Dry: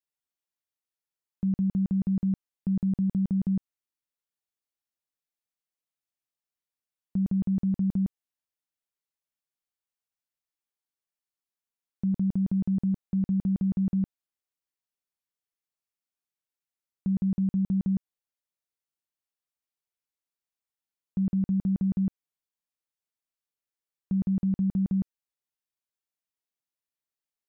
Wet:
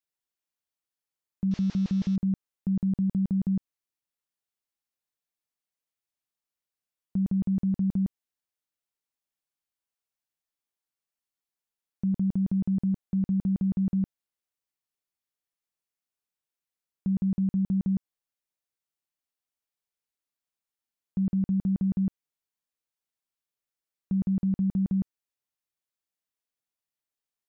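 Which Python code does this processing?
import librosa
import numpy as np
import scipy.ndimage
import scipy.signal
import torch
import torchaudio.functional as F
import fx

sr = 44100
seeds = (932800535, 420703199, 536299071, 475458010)

y = fx.delta_mod(x, sr, bps=32000, step_db=-42.5, at=(1.51, 2.16))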